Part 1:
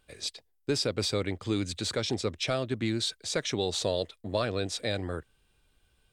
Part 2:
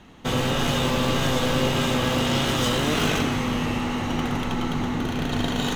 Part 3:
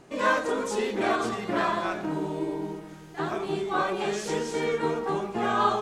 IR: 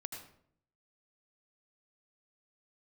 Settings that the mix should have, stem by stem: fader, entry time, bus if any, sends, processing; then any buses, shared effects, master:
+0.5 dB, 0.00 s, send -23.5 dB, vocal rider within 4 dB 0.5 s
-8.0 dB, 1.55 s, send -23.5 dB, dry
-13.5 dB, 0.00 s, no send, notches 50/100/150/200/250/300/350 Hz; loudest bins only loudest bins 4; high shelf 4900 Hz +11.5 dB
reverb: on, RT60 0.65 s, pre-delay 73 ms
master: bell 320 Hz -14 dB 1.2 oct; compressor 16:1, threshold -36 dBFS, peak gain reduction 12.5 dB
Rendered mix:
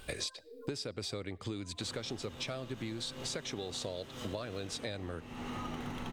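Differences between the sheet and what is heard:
stem 1 +0.5 dB -> +12.5 dB; master: missing bell 320 Hz -14 dB 1.2 oct

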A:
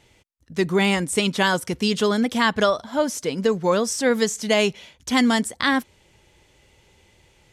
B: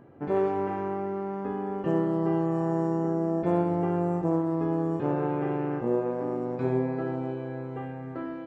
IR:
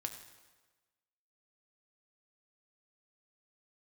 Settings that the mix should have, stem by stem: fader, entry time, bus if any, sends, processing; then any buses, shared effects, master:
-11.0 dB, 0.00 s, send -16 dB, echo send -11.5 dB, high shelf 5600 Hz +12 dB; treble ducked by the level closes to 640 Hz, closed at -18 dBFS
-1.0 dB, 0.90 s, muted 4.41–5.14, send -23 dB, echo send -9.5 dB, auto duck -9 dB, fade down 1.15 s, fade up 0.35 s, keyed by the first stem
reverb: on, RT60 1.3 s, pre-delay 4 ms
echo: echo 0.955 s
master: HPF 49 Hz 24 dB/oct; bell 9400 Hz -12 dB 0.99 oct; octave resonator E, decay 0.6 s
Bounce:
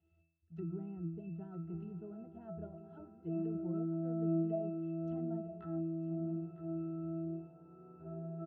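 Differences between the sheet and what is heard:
stem A -11.0 dB -> -1.0 dB; stem B: entry 0.90 s -> 1.40 s

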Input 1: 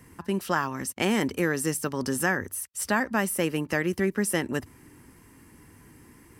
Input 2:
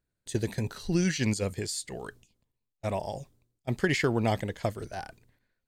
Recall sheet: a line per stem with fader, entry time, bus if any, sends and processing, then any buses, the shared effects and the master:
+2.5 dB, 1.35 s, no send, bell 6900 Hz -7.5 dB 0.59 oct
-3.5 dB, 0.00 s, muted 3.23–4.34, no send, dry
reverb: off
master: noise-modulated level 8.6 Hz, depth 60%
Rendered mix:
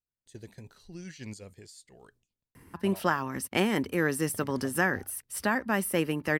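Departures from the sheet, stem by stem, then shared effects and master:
stem 1: entry 1.35 s -> 2.55 s; stem 2 -3.5 dB -> -12.5 dB

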